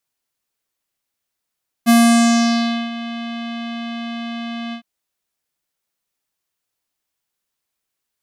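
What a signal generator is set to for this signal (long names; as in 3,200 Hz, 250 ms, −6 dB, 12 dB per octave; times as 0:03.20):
subtractive voice square A#3 12 dB per octave, low-pass 3,300 Hz, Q 2.8, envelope 2 octaves, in 0.94 s, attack 31 ms, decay 1.01 s, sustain −17.5 dB, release 0.09 s, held 2.87 s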